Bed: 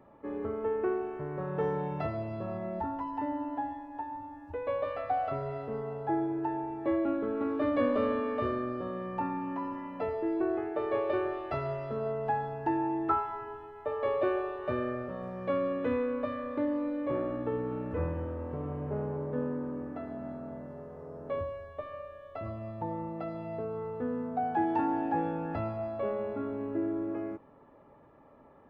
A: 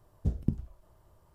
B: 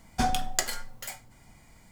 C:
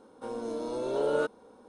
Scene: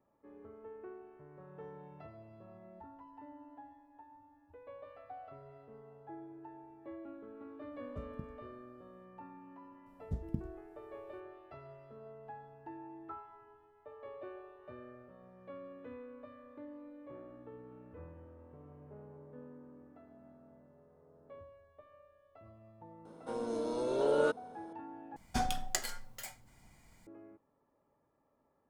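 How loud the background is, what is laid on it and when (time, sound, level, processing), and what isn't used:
bed -18.5 dB
7.71 s: add A -17 dB
9.86 s: add A -8.5 dB
23.05 s: add C -1.5 dB
25.16 s: replace with B -7 dB

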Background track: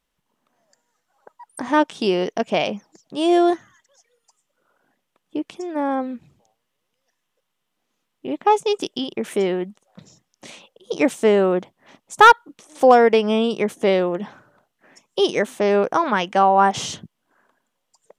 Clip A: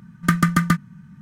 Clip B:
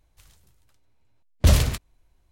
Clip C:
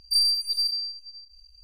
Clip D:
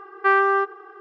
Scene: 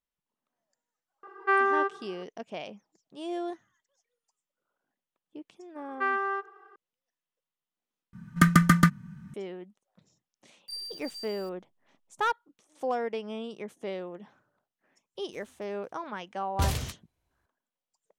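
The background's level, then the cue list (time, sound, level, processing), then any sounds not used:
background track -18 dB
1.23 s: add D -6 dB
5.76 s: add D -10 dB + high-pass 410 Hz
8.13 s: replace with A -1.5 dB
10.57 s: add C -17.5 dB + send-on-delta sampling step -34 dBFS
15.15 s: add B -8.5 dB + high-pass 72 Hz

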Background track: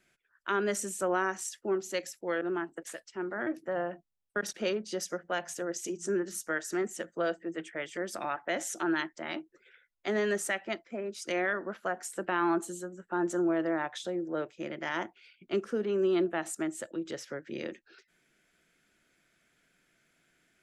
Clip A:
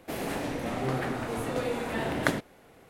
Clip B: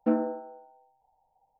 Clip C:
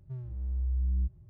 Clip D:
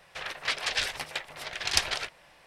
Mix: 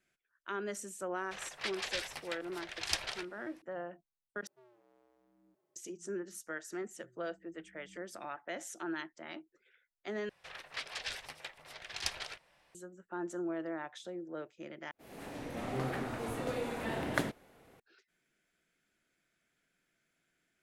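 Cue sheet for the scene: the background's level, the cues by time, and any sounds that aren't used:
background track -9 dB
1.16 s: add D -9 dB
4.47 s: replace with C -0.5 dB + high-pass 420 Hz 24 dB/octave
6.93 s: add C -12.5 dB + elliptic band-pass 160–400 Hz
10.29 s: replace with D -11.5 dB
14.91 s: replace with A -6 dB + fade-in on the opening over 0.83 s
not used: B

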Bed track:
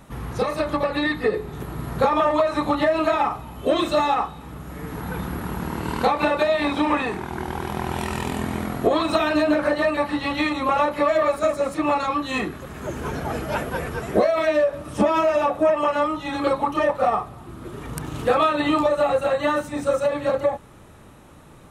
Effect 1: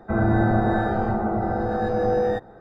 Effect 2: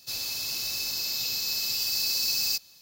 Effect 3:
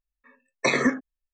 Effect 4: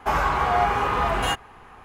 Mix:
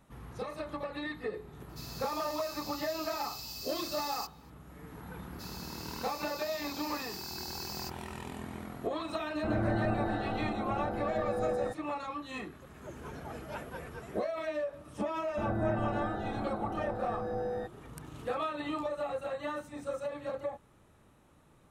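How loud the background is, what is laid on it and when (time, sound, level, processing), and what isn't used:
bed track -15.5 dB
1.69 s: add 2 -15 dB
5.32 s: add 2 -15.5 dB
9.34 s: add 1 -11.5 dB
15.28 s: add 1 -13.5 dB
not used: 3, 4

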